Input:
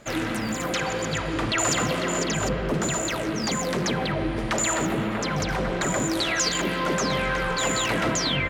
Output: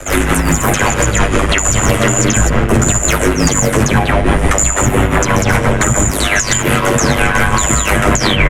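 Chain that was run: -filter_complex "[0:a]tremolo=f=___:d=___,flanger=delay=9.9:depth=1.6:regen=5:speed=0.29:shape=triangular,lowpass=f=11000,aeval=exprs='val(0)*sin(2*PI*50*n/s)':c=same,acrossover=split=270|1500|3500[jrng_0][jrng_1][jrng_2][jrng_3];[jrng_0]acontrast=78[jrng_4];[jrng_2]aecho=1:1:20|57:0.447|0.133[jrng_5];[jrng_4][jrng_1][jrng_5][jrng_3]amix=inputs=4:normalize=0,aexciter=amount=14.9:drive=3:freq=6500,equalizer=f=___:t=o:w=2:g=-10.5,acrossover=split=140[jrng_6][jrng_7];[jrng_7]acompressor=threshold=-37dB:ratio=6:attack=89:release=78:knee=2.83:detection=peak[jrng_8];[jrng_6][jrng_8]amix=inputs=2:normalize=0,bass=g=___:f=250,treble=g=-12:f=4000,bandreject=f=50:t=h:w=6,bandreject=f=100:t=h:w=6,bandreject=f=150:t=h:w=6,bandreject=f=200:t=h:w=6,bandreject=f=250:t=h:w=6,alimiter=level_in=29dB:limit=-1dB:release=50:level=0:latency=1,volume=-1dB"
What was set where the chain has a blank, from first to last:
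5.8, 0.76, 170, 5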